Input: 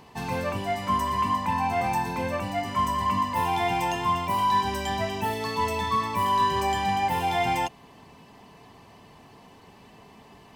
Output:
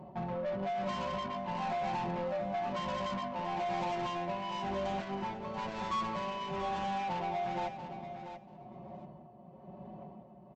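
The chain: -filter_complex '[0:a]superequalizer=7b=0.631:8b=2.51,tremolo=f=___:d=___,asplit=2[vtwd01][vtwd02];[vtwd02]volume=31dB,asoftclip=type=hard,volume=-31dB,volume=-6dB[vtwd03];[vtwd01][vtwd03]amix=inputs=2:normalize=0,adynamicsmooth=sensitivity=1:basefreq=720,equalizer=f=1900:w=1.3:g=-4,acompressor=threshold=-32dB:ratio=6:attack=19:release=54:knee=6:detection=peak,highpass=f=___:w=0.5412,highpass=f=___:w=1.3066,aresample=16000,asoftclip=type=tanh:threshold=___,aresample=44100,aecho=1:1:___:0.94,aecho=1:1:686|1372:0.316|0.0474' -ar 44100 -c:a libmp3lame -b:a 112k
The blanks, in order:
1, 0.71, 63, 63, -35dB, 5.4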